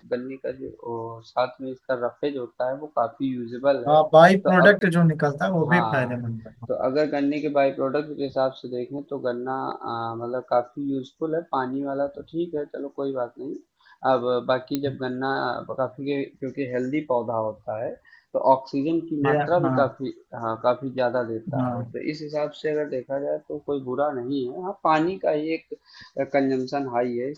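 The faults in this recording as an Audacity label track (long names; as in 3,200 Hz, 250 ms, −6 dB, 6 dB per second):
4.790000	4.810000	drop-out 21 ms
14.750000	14.750000	click −11 dBFS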